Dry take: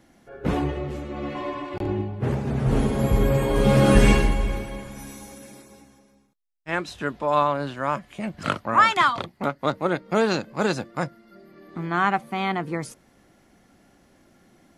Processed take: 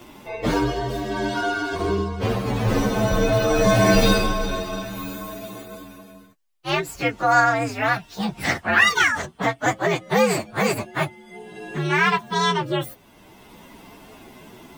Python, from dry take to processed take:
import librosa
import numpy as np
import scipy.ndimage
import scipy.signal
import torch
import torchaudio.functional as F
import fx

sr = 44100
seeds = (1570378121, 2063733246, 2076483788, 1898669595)

y = fx.partial_stretch(x, sr, pct=123)
y = fx.low_shelf(y, sr, hz=250.0, db=-7.5)
y = fx.band_squash(y, sr, depth_pct=40)
y = F.gain(torch.from_numpy(y), 8.0).numpy()